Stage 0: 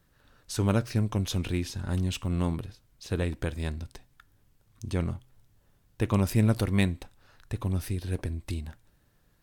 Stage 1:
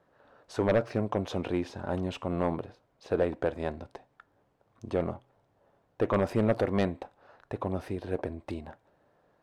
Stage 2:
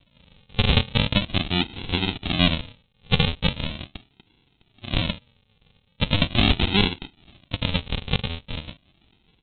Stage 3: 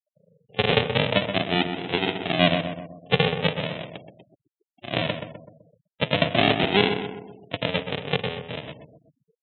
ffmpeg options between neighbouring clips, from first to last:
ffmpeg -i in.wav -filter_complex "[0:a]bandpass=frequency=650:width_type=q:width=1.6:csg=0,asplit=2[link_01][link_02];[link_02]aeval=exprs='0.141*sin(PI/2*2.82*val(0)/0.141)':channel_layout=same,volume=-4dB[link_03];[link_01][link_03]amix=inputs=2:normalize=0" out.wav
ffmpeg -i in.wav -af "aresample=8000,acrusher=samples=19:mix=1:aa=0.000001:lfo=1:lforange=11.4:lforate=0.4,aresample=44100,aexciter=amount=6.1:drive=4.5:freq=2400,volume=5.5dB" out.wav
ffmpeg -i in.wav -filter_complex "[0:a]highpass=frequency=130:width=0.5412,highpass=frequency=130:width=1.3066,equalizer=frequency=220:width_type=q:width=4:gain=-6,equalizer=frequency=440:width_type=q:width=4:gain=8,equalizer=frequency=660:width_type=q:width=4:gain=10,equalizer=frequency=1800:width_type=q:width=4:gain=6,lowpass=frequency=3400:width=0.5412,lowpass=frequency=3400:width=1.3066,asplit=2[link_01][link_02];[link_02]adelay=127,lowpass=frequency=2000:poles=1,volume=-7dB,asplit=2[link_03][link_04];[link_04]adelay=127,lowpass=frequency=2000:poles=1,volume=0.52,asplit=2[link_05][link_06];[link_06]adelay=127,lowpass=frequency=2000:poles=1,volume=0.52,asplit=2[link_07][link_08];[link_08]adelay=127,lowpass=frequency=2000:poles=1,volume=0.52,asplit=2[link_09][link_10];[link_10]adelay=127,lowpass=frequency=2000:poles=1,volume=0.52,asplit=2[link_11][link_12];[link_12]adelay=127,lowpass=frequency=2000:poles=1,volume=0.52[link_13];[link_01][link_03][link_05][link_07][link_09][link_11][link_13]amix=inputs=7:normalize=0,afftfilt=real='re*gte(hypot(re,im),0.00708)':imag='im*gte(hypot(re,im),0.00708)':win_size=1024:overlap=0.75" out.wav

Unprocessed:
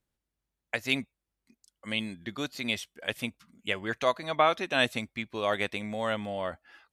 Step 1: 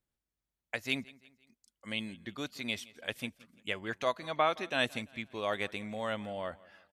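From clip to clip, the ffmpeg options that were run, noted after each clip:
ffmpeg -i in.wav -af "aecho=1:1:170|340|510:0.0794|0.035|0.0154,volume=-5dB" out.wav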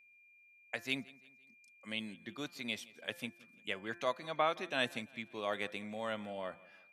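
ffmpeg -i in.wav -af "highpass=frequency=120:width=0.5412,highpass=frequency=120:width=1.3066,bandreject=frequency=173:width_type=h:width=4,bandreject=frequency=346:width_type=h:width=4,bandreject=frequency=519:width_type=h:width=4,bandreject=frequency=692:width_type=h:width=4,bandreject=frequency=865:width_type=h:width=4,bandreject=frequency=1038:width_type=h:width=4,bandreject=frequency=1211:width_type=h:width=4,bandreject=frequency=1384:width_type=h:width=4,bandreject=frequency=1557:width_type=h:width=4,bandreject=frequency=1730:width_type=h:width=4,bandreject=frequency=1903:width_type=h:width=4,aeval=exprs='val(0)+0.00126*sin(2*PI*2400*n/s)':channel_layout=same,volume=-3.5dB" out.wav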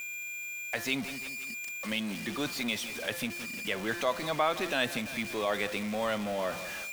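ffmpeg -i in.wav -filter_complex "[0:a]aeval=exprs='val(0)+0.5*0.00944*sgn(val(0))':channel_layout=same,asplit=2[link_01][link_02];[link_02]alimiter=level_in=2.5dB:limit=-24dB:level=0:latency=1:release=124,volume=-2.5dB,volume=0.5dB[link_03];[link_01][link_03]amix=inputs=2:normalize=0" out.wav

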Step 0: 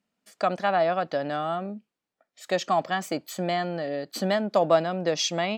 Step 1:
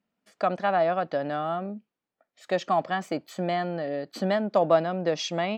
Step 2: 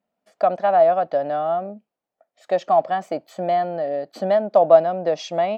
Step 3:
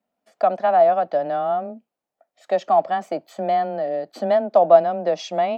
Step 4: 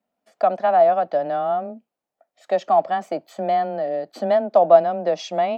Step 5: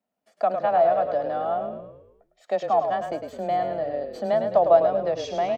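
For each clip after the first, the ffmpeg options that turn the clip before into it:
ffmpeg -i in.wav -af "lowpass=frequency=2500:poles=1" out.wav
ffmpeg -i in.wav -af "equalizer=frequency=660:width=1.5:gain=12.5,volume=-3dB" out.wav
ffmpeg -i in.wav -af "afreqshift=13" out.wav
ffmpeg -i in.wav -af anull out.wav
ffmpeg -i in.wav -filter_complex "[0:a]asplit=7[link_01][link_02][link_03][link_04][link_05][link_06][link_07];[link_02]adelay=105,afreqshift=-42,volume=-7dB[link_08];[link_03]adelay=210,afreqshift=-84,volume=-13dB[link_09];[link_04]adelay=315,afreqshift=-126,volume=-19dB[link_10];[link_05]adelay=420,afreqshift=-168,volume=-25.1dB[link_11];[link_06]adelay=525,afreqshift=-210,volume=-31.1dB[link_12];[link_07]adelay=630,afreqshift=-252,volume=-37.1dB[link_13];[link_01][link_08][link_09][link_10][link_11][link_12][link_13]amix=inputs=7:normalize=0,volume=-4.5dB" out.wav

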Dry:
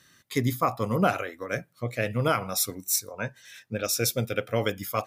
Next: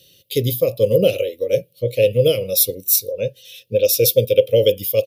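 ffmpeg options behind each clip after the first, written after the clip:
ffmpeg -i in.wav -af "firequalizer=gain_entry='entry(130,0);entry(250,-8);entry(530,13);entry(750,-26);entry(1500,-29);entry(2800,7);entry(7300,-6);entry(12000,8)':delay=0.05:min_phase=1,volume=6.5dB" out.wav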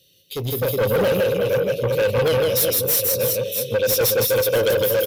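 ffmpeg -i in.wav -filter_complex "[0:a]asplit=2[link_01][link_02];[link_02]aecho=0:1:160|368|638.4|989.9|1447:0.631|0.398|0.251|0.158|0.1[link_03];[link_01][link_03]amix=inputs=2:normalize=0,asoftclip=type=tanh:threshold=-18dB,dynaudnorm=framelen=220:gausssize=5:maxgain=9dB,volume=-6.5dB" out.wav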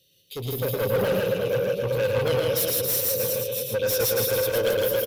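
ffmpeg -i in.wav -af "aecho=1:1:113:0.631,volume=-6dB" out.wav

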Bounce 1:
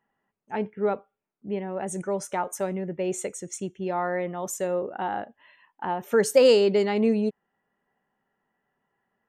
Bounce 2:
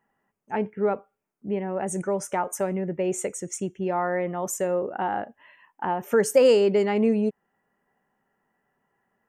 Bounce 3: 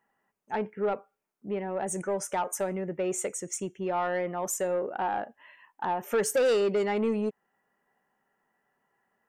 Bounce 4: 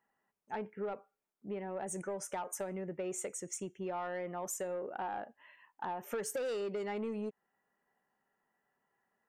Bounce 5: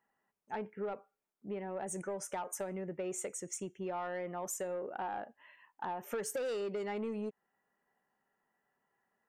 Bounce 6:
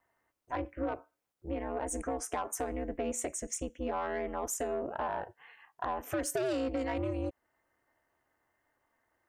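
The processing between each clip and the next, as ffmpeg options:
ffmpeg -i in.wav -filter_complex "[0:a]equalizer=frequency=3900:width_type=o:width=0.46:gain=-12,asplit=2[link_01][link_02];[link_02]acompressor=threshold=-28dB:ratio=6,volume=-2dB[link_03];[link_01][link_03]amix=inputs=2:normalize=0,volume=-1.5dB" out.wav
ffmpeg -i in.wav -af "lowshelf=frequency=310:gain=-8,asoftclip=type=tanh:threshold=-20dB" out.wav
ffmpeg -i in.wav -af "acompressor=threshold=-29dB:ratio=6,volume=-6dB" out.wav
ffmpeg -i in.wav -af anull out.wav
ffmpeg -i in.wav -af "aeval=exprs='val(0)*sin(2*PI*130*n/s)':channel_layout=same,volume=7dB" out.wav

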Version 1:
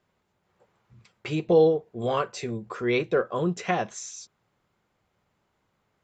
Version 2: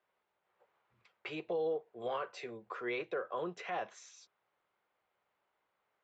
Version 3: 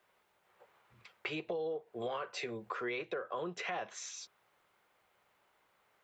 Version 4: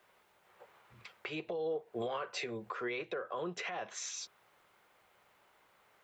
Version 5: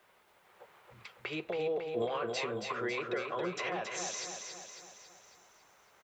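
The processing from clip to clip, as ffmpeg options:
ffmpeg -i in.wav -filter_complex "[0:a]acrossover=split=410 3900:gain=0.112 1 0.141[link_01][link_02][link_03];[link_01][link_02][link_03]amix=inputs=3:normalize=0,acrossover=split=170[link_04][link_05];[link_05]alimiter=limit=-23dB:level=0:latency=1:release=39[link_06];[link_04][link_06]amix=inputs=2:normalize=0,volume=-5.5dB" out.wav
ffmpeg -i in.wav -af "equalizer=frequency=620:width=0.35:gain=-4,acompressor=threshold=-49dB:ratio=4,volume=12dB" out.wav
ffmpeg -i in.wav -af "alimiter=level_in=10dB:limit=-24dB:level=0:latency=1:release=378,volume=-10dB,volume=5dB" out.wav
ffmpeg -i in.wav -af "aecho=1:1:275|550|825|1100|1375|1650|1925:0.562|0.304|0.164|0.0885|0.0478|0.0258|0.0139,volume=2dB" out.wav

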